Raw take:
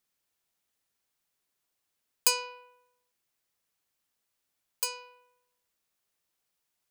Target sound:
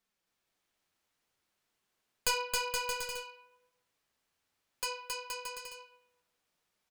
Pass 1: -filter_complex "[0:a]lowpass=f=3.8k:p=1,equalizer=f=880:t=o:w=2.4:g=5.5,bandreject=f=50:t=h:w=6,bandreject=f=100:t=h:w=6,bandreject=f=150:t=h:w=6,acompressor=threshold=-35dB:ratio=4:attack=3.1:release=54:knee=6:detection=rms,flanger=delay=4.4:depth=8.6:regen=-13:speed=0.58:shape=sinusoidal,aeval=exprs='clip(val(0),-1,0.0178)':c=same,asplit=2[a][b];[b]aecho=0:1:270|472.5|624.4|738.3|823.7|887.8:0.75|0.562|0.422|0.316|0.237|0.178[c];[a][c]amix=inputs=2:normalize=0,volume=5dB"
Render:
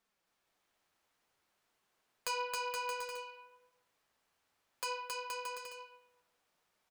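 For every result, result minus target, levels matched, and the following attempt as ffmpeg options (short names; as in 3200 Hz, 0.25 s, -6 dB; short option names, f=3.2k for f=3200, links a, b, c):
compressor: peak gain reduction +13 dB; 1000 Hz band +4.5 dB
-filter_complex "[0:a]lowpass=f=3.8k:p=1,equalizer=f=880:t=o:w=2.4:g=5.5,bandreject=f=50:t=h:w=6,bandreject=f=100:t=h:w=6,bandreject=f=150:t=h:w=6,flanger=delay=4.4:depth=8.6:regen=-13:speed=0.58:shape=sinusoidal,aeval=exprs='clip(val(0),-1,0.0178)':c=same,asplit=2[a][b];[b]aecho=0:1:270|472.5|624.4|738.3|823.7|887.8:0.75|0.562|0.422|0.316|0.237|0.178[c];[a][c]amix=inputs=2:normalize=0,volume=5dB"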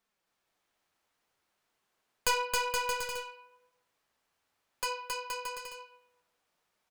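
1000 Hz band +3.0 dB
-filter_complex "[0:a]lowpass=f=3.8k:p=1,bandreject=f=50:t=h:w=6,bandreject=f=100:t=h:w=6,bandreject=f=150:t=h:w=6,flanger=delay=4.4:depth=8.6:regen=-13:speed=0.58:shape=sinusoidal,aeval=exprs='clip(val(0),-1,0.0178)':c=same,asplit=2[a][b];[b]aecho=0:1:270|472.5|624.4|738.3|823.7|887.8:0.75|0.562|0.422|0.316|0.237|0.178[c];[a][c]amix=inputs=2:normalize=0,volume=5dB"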